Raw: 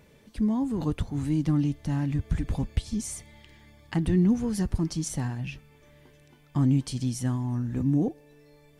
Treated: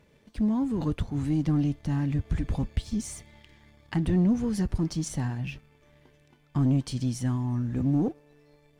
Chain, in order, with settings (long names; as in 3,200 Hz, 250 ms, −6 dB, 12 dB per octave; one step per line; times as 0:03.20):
high-shelf EQ 8,500 Hz −9 dB
leveller curve on the samples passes 1
level −3 dB